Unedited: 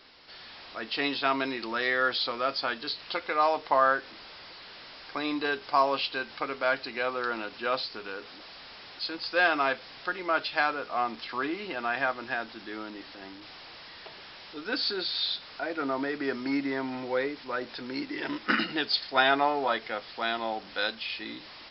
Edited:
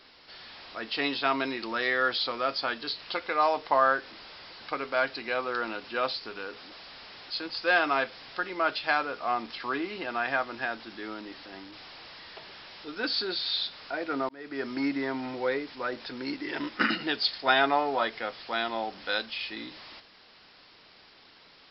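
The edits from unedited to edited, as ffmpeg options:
ffmpeg -i in.wav -filter_complex "[0:a]asplit=3[link_01][link_02][link_03];[link_01]atrim=end=4.602[link_04];[link_02]atrim=start=6.288:end=15.98,asetpts=PTS-STARTPTS,afade=type=out:start_time=9.688:duration=0.004:curve=hsin[link_05];[link_03]atrim=start=15.98,asetpts=PTS-STARTPTS,afade=type=in:duration=0.43[link_06];[link_05][link_06]concat=n=2:v=0:a=1[link_07];[link_04][link_07]acrossfade=duration=0.004:curve1=hsin:curve2=hsin" out.wav

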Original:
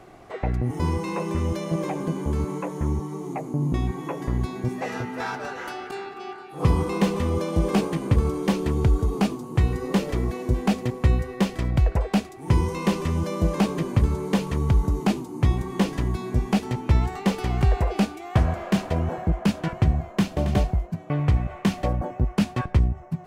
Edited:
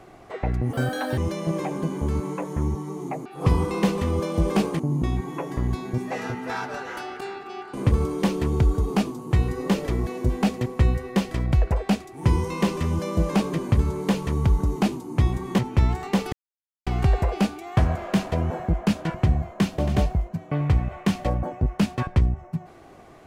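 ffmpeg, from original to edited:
ffmpeg -i in.wav -filter_complex "[0:a]asplit=8[link_01][link_02][link_03][link_04][link_05][link_06][link_07][link_08];[link_01]atrim=end=0.734[link_09];[link_02]atrim=start=0.73:end=1.42,asetpts=PTS-STARTPTS,asetrate=68355,aresample=44100[link_10];[link_03]atrim=start=1.416:end=3.502[link_11];[link_04]atrim=start=6.438:end=7.982[link_12];[link_05]atrim=start=3.498:end=6.442[link_13];[link_06]atrim=start=7.978:end=15.832[link_14];[link_07]atrim=start=16.708:end=17.45,asetpts=PTS-STARTPTS,afade=type=out:start_time=0.738:duration=0.004:curve=hsin,apad=pad_dur=0.54[link_15];[link_08]atrim=start=17.45,asetpts=PTS-STARTPTS,afade=type=in:duration=0.004:curve=hsin[link_16];[link_09][link_10]acrossfade=duration=0.004:curve1=hsin:curve2=hsin[link_17];[link_17][link_11]acrossfade=duration=0.004:curve1=hsin:curve2=hsin[link_18];[link_18][link_12]acrossfade=duration=0.004:curve1=hsin:curve2=hsin[link_19];[link_19][link_13]acrossfade=duration=0.004:curve1=hsin:curve2=hsin[link_20];[link_20][link_14]acrossfade=duration=0.004:curve1=hsin:curve2=hsin[link_21];[link_15][link_16]concat=n=2:v=0:a=1[link_22];[link_21][link_22]acrossfade=duration=0.004:curve1=hsin:curve2=hsin" out.wav

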